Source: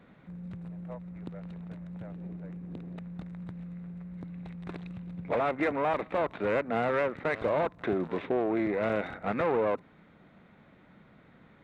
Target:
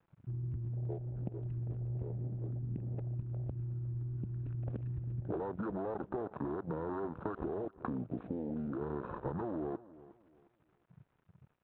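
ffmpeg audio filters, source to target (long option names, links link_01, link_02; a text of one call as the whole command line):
ffmpeg -i in.wav -af "asetrate=30296,aresample=44100,atempo=1.45565,alimiter=level_in=1dB:limit=-24dB:level=0:latency=1:release=57,volume=-1dB,acompressor=threshold=-41dB:ratio=10,aresample=8000,aeval=exprs='sgn(val(0))*max(abs(val(0))-0.0015,0)':channel_layout=same,aresample=44100,afwtdn=0.00355,aecho=1:1:359|718|1077:0.119|0.0357|0.0107,volume=8dB" out.wav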